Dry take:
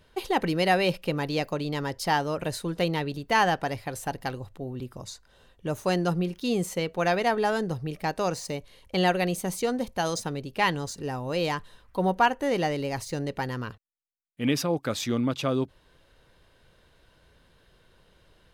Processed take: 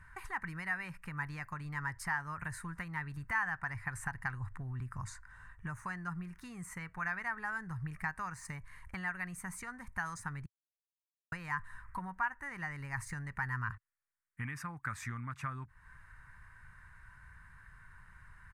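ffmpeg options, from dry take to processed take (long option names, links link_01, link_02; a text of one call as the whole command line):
ffmpeg -i in.wav -filter_complex "[0:a]asettb=1/sr,asplit=3[link_01][link_02][link_03];[link_01]atrim=end=3.574[link_04];[link_02]atrim=start=3.57:end=6.14,asetpts=PTS-STARTPTS,afade=type=in:duration=0.004:curve=qsin,afade=type=out:start_time=2.566:duration=0.004:curve=qsin,equalizer=frequency=15000:width=1.1:gain=-10.5[link_05];[link_03]atrim=start=6.136[link_06];[link_04][link_05]acrossfade=duration=0.004:curve1=hsin:curve2=qsin[link_07];[link_07][link_06]acrossfade=duration=0.004:curve1=qsin:curve2=hsin,asplit=3[link_08][link_09][link_10];[link_08]atrim=end=10.46,asetpts=PTS-STARTPTS,afade=type=out:start_time=10.456:duration=0.004:curve=hsin[link_11];[link_09]atrim=start=10.46:end=11.32,asetpts=PTS-STARTPTS,volume=0[link_12];[link_10]atrim=start=11.32,asetpts=PTS-STARTPTS,afade=type=in:duration=0.004:curve=hsin[link_13];[link_11][link_12][link_13]concat=n=3:v=0:a=1,acompressor=threshold=-36dB:ratio=6,firequalizer=gain_entry='entry(110,0);entry(270,-19);entry(520,-28);entry(980,0);entry(1800,6);entry(3200,-24);entry(8500,-5);entry(15000,-18)':delay=0.05:min_phase=1,volume=5.5dB" out.wav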